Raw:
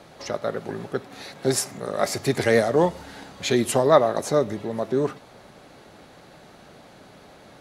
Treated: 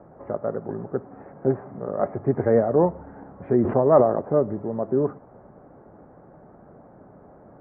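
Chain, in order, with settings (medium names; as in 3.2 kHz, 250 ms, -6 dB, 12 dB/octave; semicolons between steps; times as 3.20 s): Bessel low-pass 840 Hz, order 8; 3.52–4.16 s: decay stretcher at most 77 dB/s; trim +1.5 dB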